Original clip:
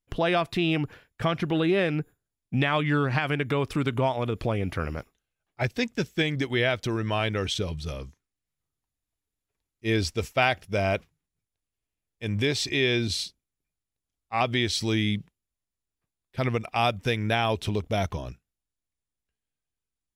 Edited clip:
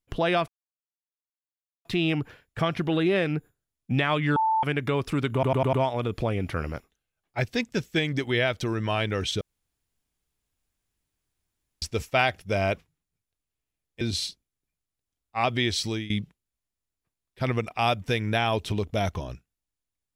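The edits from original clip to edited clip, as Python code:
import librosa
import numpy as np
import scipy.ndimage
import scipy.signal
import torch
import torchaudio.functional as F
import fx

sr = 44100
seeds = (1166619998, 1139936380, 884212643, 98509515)

y = fx.edit(x, sr, fx.insert_silence(at_s=0.48, length_s=1.37),
    fx.bleep(start_s=2.99, length_s=0.27, hz=884.0, db=-20.0),
    fx.stutter(start_s=3.96, slice_s=0.1, count=5),
    fx.room_tone_fill(start_s=7.64, length_s=2.41),
    fx.cut(start_s=12.24, length_s=0.74),
    fx.fade_out_to(start_s=14.79, length_s=0.28, floor_db=-18.0), tone=tone)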